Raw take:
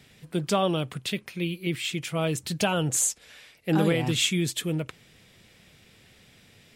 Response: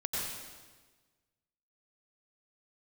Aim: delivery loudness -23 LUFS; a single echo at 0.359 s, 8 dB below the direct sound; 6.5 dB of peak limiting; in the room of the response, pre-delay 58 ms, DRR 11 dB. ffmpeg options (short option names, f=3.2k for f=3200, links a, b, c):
-filter_complex "[0:a]alimiter=limit=-18.5dB:level=0:latency=1,aecho=1:1:359:0.398,asplit=2[a][b];[1:a]atrim=start_sample=2205,adelay=58[c];[b][c]afir=irnorm=-1:irlink=0,volume=-16dB[d];[a][d]amix=inputs=2:normalize=0,volume=6dB"